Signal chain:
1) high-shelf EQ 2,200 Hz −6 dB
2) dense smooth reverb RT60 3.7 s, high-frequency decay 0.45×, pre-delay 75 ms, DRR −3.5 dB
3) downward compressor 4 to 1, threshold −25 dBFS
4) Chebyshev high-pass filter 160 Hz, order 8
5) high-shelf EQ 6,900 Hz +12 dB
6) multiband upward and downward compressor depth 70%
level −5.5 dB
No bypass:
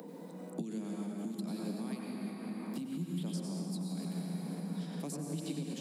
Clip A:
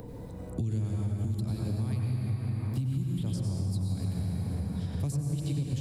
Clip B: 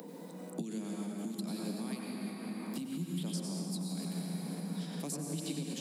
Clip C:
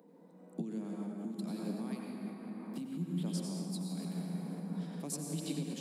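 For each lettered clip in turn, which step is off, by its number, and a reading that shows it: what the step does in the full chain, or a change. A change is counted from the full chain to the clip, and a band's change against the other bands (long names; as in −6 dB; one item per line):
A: 4, 125 Hz band +13.0 dB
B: 1, 8 kHz band +5.0 dB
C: 6, change in crest factor +3.0 dB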